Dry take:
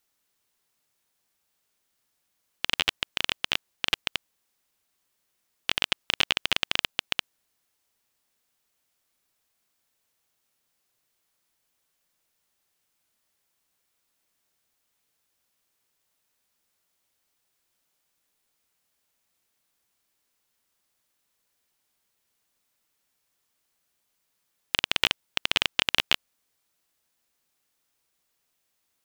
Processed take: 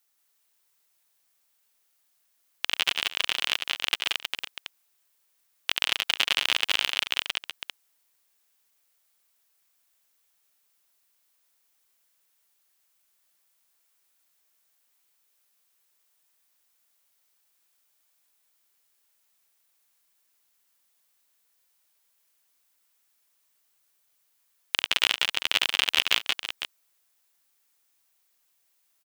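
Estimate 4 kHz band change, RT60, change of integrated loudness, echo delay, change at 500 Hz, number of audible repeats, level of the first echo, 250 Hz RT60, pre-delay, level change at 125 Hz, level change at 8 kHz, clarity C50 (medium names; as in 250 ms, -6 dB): +2.0 dB, no reverb, +1.0 dB, 70 ms, -2.0 dB, 4, -20.0 dB, no reverb, no reverb, no reading, +3.5 dB, no reverb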